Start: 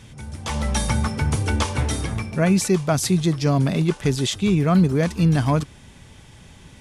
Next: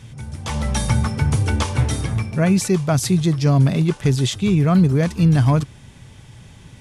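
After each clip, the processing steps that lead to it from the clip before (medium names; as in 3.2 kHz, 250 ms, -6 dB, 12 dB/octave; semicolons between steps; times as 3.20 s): peaking EQ 120 Hz +8 dB 0.66 oct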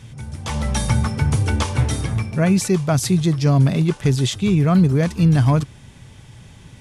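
no audible change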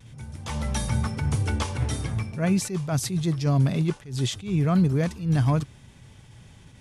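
vibrato 0.42 Hz 17 cents; attacks held to a fixed rise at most 140 dB/s; trim -6 dB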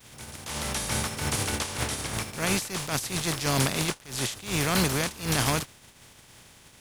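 spectral contrast reduction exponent 0.42; trim -4 dB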